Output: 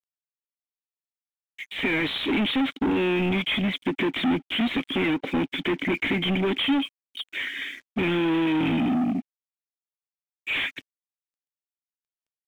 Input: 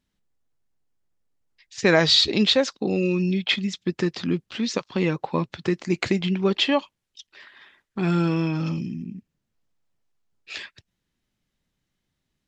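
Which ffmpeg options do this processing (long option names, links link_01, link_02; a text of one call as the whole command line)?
ffmpeg -i in.wav -filter_complex "[0:a]acompressor=threshold=-22dB:ratio=6,asplit=3[link_01][link_02][link_03];[link_01]bandpass=frequency=270:width_type=q:width=8,volume=0dB[link_04];[link_02]bandpass=frequency=2290:width_type=q:width=8,volume=-6dB[link_05];[link_03]bandpass=frequency=3010:width_type=q:width=8,volume=-9dB[link_06];[link_04][link_05][link_06]amix=inputs=3:normalize=0,asplit=2[link_07][link_08];[link_08]highpass=frequency=720:poles=1,volume=36dB,asoftclip=type=tanh:threshold=-22.5dB[link_09];[link_07][link_09]amix=inputs=2:normalize=0,lowpass=frequency=2600:poles=1,volume=-6dB,aresample=8000,aresample=44100,aeval=exprs='sgn(val(0))*max(abs(val(0))-0.00133,0)':channel_layout=same,volume=7dB" out.wav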